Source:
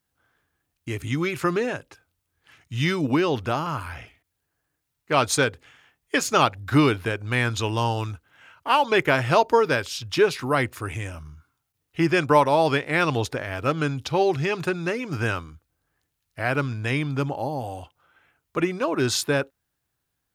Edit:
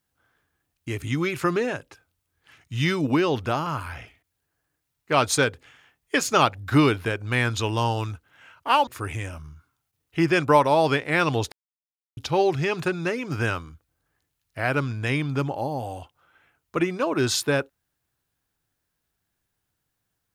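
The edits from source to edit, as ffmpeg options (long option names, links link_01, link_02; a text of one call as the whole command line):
ffmpeg -i in.wav -filter_complex "[0:a]asplit=4[link_01][link_02][link_03][link_04];[link_01]atrim=end=8.872[link_05];[link_02]atrim=start=10.678:end=13.33,asetpts=PTS-STARTPTS,afade=type=out:start_time=2.648:duration=0.004:curve=hsin[link_06];[link_03]atrim=start=13.33:end=13.98,asetpts=PTS-STARTPTS,volume=0[link_07];[link_04]atrim=start=13.98,asetpts=PTS-STARTPTS,afade=type=in:duration=0.004:curve=hsin[link_08];[link_06][link_07][link_08]concat=n=3:v=0:a=1[link_09];[link_05][link_09]acrossfade=duration=0.004:curve1=hsin:curve2=hsin" out.wav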